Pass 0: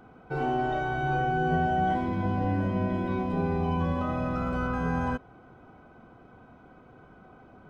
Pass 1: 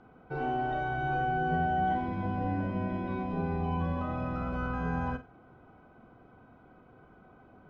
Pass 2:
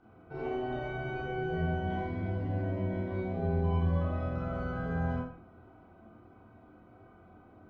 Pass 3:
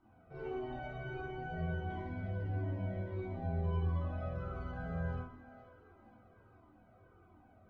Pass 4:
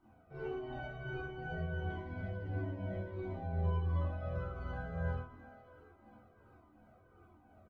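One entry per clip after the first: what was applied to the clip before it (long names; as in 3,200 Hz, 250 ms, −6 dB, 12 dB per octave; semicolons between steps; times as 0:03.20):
high-frequency loss of the air 120 metres; flutter between parallel walls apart 8 metres, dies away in 0.24 s; level −4 dB
convolution reverb RT60 0.50 s, pre-delay 21 ms, DRR −6 dB; level −8 dB
echo with a time of its own for lows and highs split 350 Hz, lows 140 ms, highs 476 ms, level −14 dB; flanger whose copies keep moving one way falling 1.5 Hz; level −2.5 dB
shaped tremolo triangle 2.8 Hz, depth 45%; double-tracking delay 14 ms −9 dB; level +1.5 dB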